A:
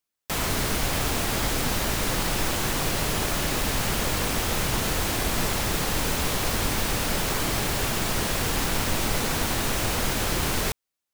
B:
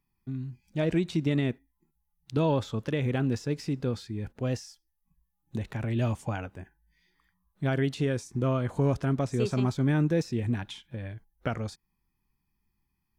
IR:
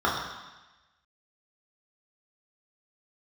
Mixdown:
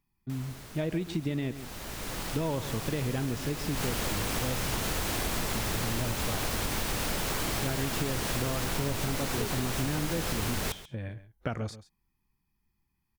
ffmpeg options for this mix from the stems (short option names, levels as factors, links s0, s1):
-filter_complex "[0:a]volume=0.891,afade=t=in:st=1.53:d=0.67:silence=0.266073,afade=t=in:st=3.69:d=0.21:silence=0.354813,asplit=2[s0][s1];[s1]volume=0.0891[s2];[1:a]volume=1,asplit=2[s3][s4];[s4]volume=0.168[s5];[s2][s5]amix=inputs=2:normalize=0,aecho=0:1:136:1[s6];[s0][s3][s6]amix=inputs=3:normalize=0,acompressor=threshold=0.0447:ratio=6"